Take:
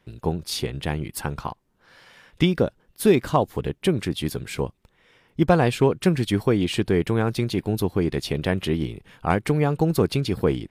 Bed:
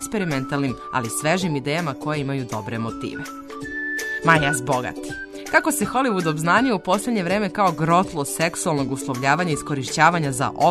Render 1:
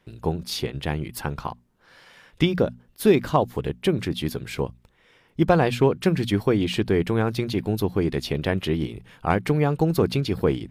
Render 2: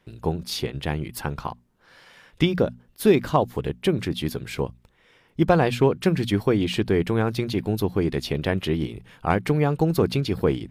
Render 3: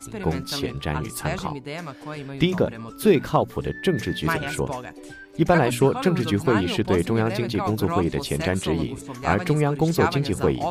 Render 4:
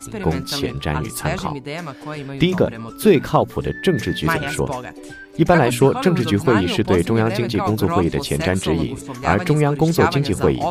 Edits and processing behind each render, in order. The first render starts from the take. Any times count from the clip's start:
notches 60/120/180/240 Hz; dynamic EQ 8700 Hz, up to -6 dB, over -51 dBFS, Q 1.7
nothing audible
add bed -10 dB
gain +4.5 dB; limiter -2 dBFS, peak gain reduction 1.5 dB

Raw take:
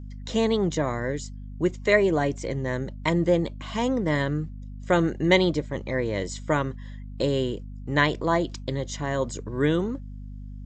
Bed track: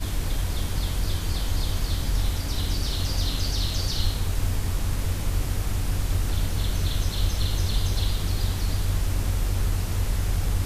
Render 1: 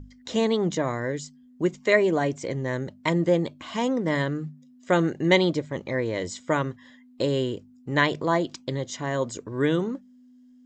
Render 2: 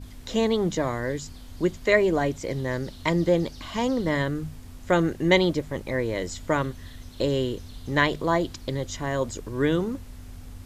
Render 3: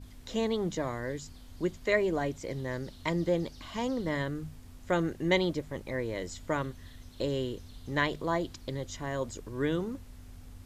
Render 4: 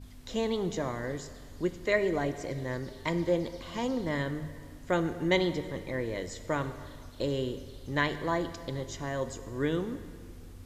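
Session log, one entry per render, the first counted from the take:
notches 50/100/150/200 Hz
add bed track -17.5 dB
gain -7 dB
plate-style reverb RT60 2 s, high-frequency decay 0.8×, DRR 10 dB

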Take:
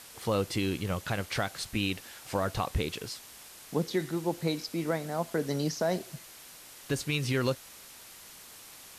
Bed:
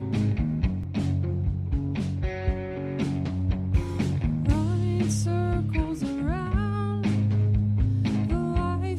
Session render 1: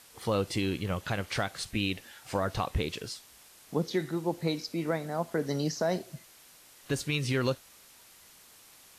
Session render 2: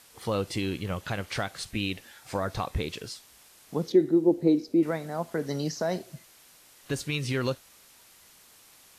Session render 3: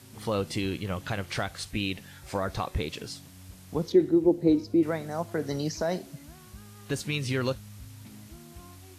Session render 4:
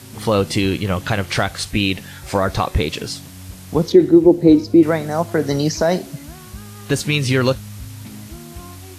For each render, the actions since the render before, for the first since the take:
noise print and reduce 6 dB
2.1–2.84 notch 2900 Hz; 3.92–4.83 EQ curve 170 Hz 0 dB, 320 Hz +13 dB, 1100 Hz -9 dB
add bed -22.5 dB
gain +12 dB; limiter -1 dBFS, peak gain reduction 3 dB

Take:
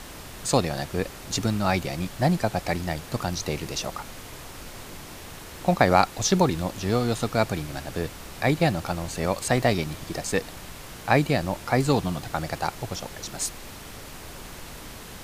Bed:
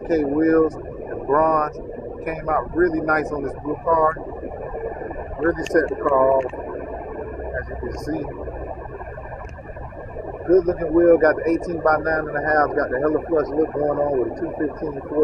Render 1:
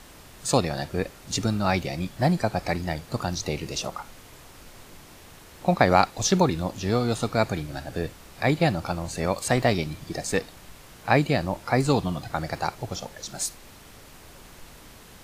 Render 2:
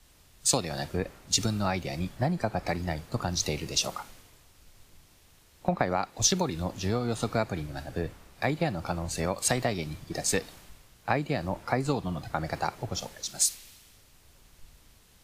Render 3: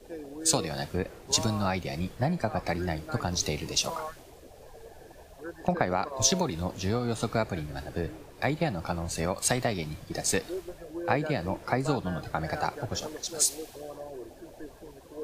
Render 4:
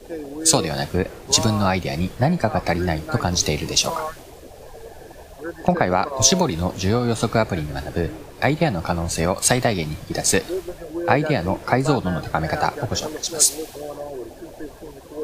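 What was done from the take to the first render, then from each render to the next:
noise print and reduce 7 dB
compressor 16:1, threshold -24 dBFS, peak gain reduction 13 dB; three-band expander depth 70%
add bed -20.5 dB
gain +9 dB; limiter -2 dBFS, peak gain reduction 2 dB

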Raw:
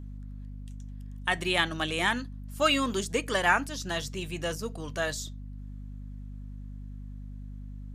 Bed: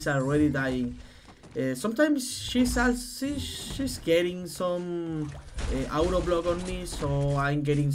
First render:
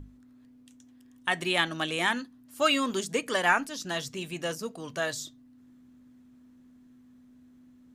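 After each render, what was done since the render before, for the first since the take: notches 50/100/150/200 Hz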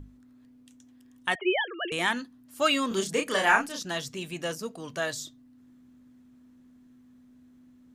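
1.35–1.92 sine-wave speech; 2.88–3.83 doubler 31 ms -3 dB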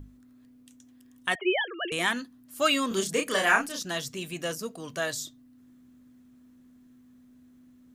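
high shelf 9900 Hz +8.5 dB; notch 880 Hz, Q 12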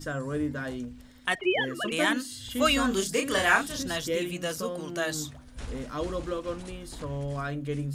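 add bed -6.5 dB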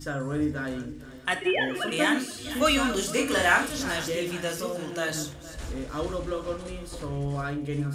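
regenerating reverse delay 0.232 s, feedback 60%, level -13.5 dB; non-linear reverb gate 0.13 s falling, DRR 6 dB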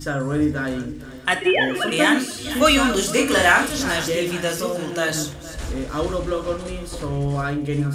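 gain +7 dB; limiter -3 dBFS, peak gain reduction 2.5 dB

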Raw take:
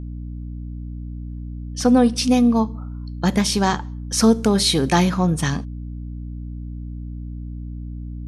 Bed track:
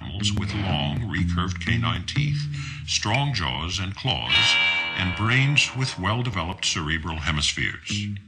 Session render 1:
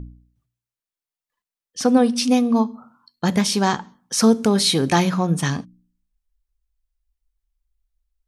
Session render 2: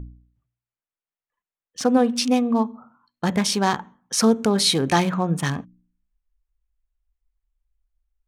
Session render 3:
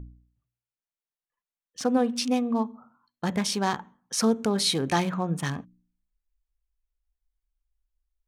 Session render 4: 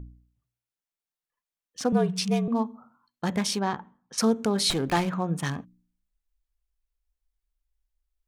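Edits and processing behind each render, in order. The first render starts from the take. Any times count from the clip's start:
de-hum 60 Hz, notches 5
Wiener smoothing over 9 samples; bell 210 Hz -3 dB 2 oct
gain -5.5 dB
1.92–2.48 frequency shift -55 Hz; 3.59–4.18 tape spacing loss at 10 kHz 21 dB; 4.7–5.1 running maximum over 5 samples

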